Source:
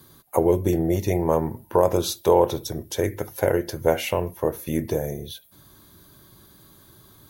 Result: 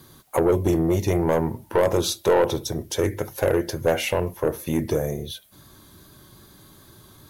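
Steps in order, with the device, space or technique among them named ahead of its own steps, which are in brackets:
compact cassette (soft clipping −15 dBFS, distortion −11 dB; low-pass filter 12,000 Hz 12 dB per octave; tape wow and flutter 28 cents; white noise bed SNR 42 dB)
level +3 dB

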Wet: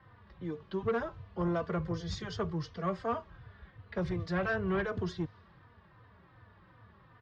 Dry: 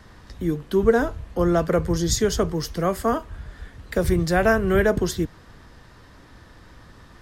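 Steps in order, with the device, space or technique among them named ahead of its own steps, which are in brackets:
low-pass that shuts in the quiet parts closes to 2,500 Hz, open at −19 dBFS
barber-pole flanger into a guitar amplifier (barber-pole flanger 3.3 ms −2.7 Hz; soft clipping −17 dBFS, distortion −13 dB; loudspeaker in its box 78–4,600 Hz, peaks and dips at 100 Hz +8 dB, 180 Hz +4 dB, 270 Hz −8 dB, 1,100 Hz +5 dB)
level −8 dB

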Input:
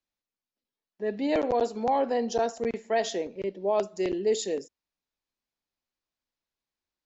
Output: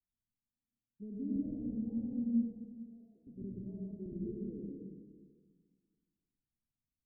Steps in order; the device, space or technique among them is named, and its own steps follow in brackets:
0:02.29–0:03.27: first difference
club heard from the street (brickwall limiter −25 dBFS, peak gain reduction 9.5 dB; low-pass filter 220 Hz 24 dB per octave; convolution reverb RT60 1.6 s, pre-delay 90 ms, DRR −3.5 dB)

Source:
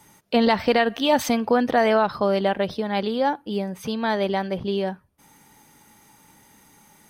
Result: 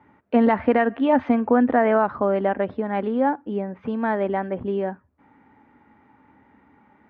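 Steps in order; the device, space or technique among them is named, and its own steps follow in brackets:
bass cabinet (loudspeaker in its box 66–2,000 Hz, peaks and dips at 75 Hz +5 dB, 160 Hz −9 dB, 260 Hz +7 dB)

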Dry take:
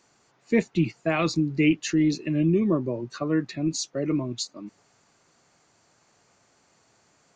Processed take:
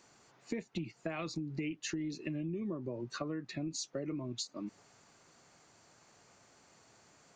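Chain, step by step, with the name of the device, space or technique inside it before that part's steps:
serial compression, leveller first (downward compressor 2 to 1, threshold −25 dBFS, peak gain reduction 5.5 dB; downward compressor 6 to 1, threshold −36 dBFS, peak gain reduction 14.5 dB)

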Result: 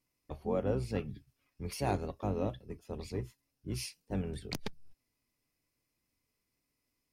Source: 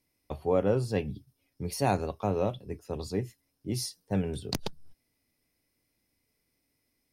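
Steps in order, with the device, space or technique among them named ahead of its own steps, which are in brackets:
octave pedal (pitch-shifted copies added −12 semitones −5 dB)
0:01.14–0:01.73: parametric band 1,700 Hz +6.5 dB 2.3 octaves
level −7 dB

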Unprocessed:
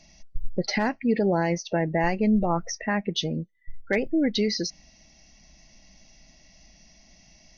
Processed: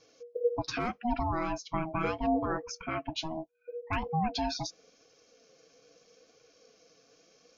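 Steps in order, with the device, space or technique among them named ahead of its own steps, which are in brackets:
alien voice (ring modulation 480 Hz; flanger 0.78 Hz, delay 2 ms, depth 5.6 ms, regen −32%)
level −1.5 dB

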